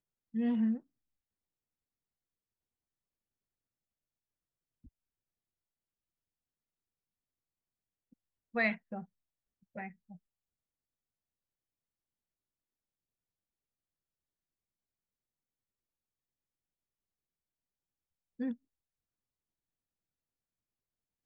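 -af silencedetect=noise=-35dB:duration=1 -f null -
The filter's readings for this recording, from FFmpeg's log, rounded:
silence_start: 0.77
silence_end: 8.56 | silence_duration: 7.79
silence_start: 9.85
silence_end: 18.40 | silence_duration: 8.56
silence_start: 18.52
silence_end: 21.25 | silence_duration: 2.73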